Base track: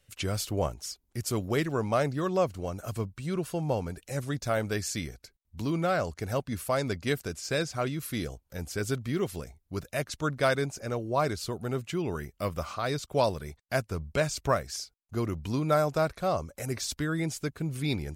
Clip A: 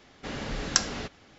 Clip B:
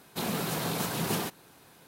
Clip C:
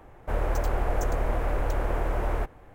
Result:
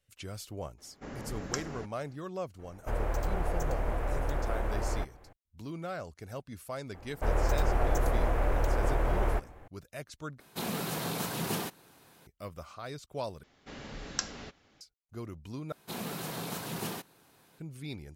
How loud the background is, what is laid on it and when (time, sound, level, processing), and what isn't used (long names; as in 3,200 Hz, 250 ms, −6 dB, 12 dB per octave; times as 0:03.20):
base track −11 dB
0:00.78: mix in A −5.5 dB + parametric band 3,700 Hz −13.5 dB 1.5 octaves
0:02.59: mix in C −5 dB
0:06.94: mix in C −1 dB
0:10.40: overwrite with B −3 dB
0:13.43: overwrite with A −9.5 dB
0:15.72: overwrite with B −6.5 dB